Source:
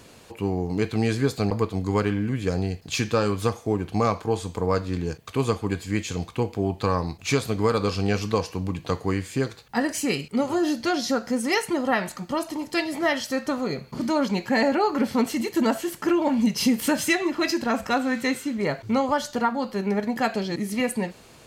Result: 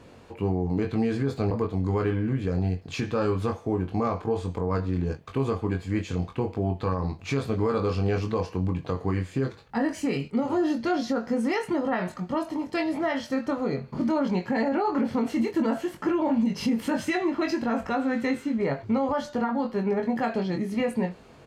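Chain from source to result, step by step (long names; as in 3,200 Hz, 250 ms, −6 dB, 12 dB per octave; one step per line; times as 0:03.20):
low-pass filter 1,400 Hz 6 dB per octave
double-tracking delay 22 ms −5 dB
brickwall limiter −17 dBFS, peak gain reduction 9 dB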